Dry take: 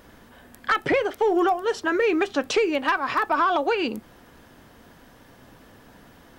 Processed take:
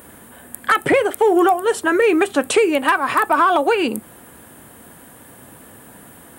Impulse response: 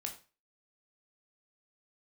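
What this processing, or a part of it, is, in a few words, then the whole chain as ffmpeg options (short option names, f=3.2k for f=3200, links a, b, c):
budget condenser microphone: -af "highpass=76,highshelf=f=7.1k:t=q:w=3:g=9.5,volume=6.5dB"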